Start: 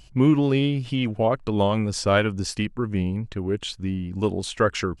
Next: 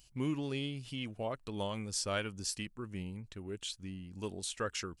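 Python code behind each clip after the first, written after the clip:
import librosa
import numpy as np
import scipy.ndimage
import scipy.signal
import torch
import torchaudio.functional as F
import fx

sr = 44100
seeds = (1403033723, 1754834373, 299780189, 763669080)

y = scipy.signal.lfilter([1.0, -0.8], [1.0], x)
y = F.gain(torch.from_numpy(y), -3.0).numpy()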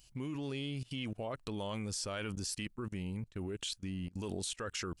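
y = fx.level_steps(x, sr, step_db=24)
y = F.gain(torch.from_numpy(y), 9.5).numpy()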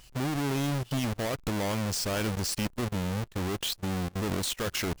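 y = fx.halfwave_hold(x, sr)
y = F.gain(torch.from_numpy(y), 4.5).numpy()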